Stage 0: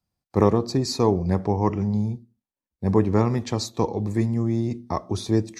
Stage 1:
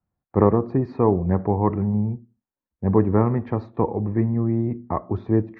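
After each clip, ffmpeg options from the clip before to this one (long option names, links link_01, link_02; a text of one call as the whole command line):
ffmpeg -i in.wav -af "lowpass=frequency=1800:width=0.5412,lowpass=frequency=1800:width=1.3066,volume=1.5dB" out.wav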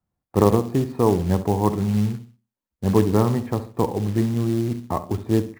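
ffmpeg -i in.wav -filter_complex "[0:a]asplit=2[link_01][link_02];[link_02]adelay=67,lowpass=frequency=1400:poles=1,volume=-12dB,asplit=2[link_03][link_04];[link_04]adelay=67,lowpass=frequency=1400:poles=1,volume=0.32,asplit=2[link_05][link_06];[link_06]adelay=67,lowpass=frequency=1400:poles=1,volume=0.32[link_07];[link_01][link_03][link_05][link_07]amix=inputs=4:normalize=0,acrusher=bits=5:mode=log:mix=0:aa=0.000001" out.wav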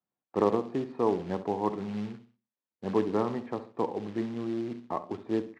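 ffmpeg -i in.wav -af "highpass=260,lowpass=3500,volume=-6.5dB" out.wav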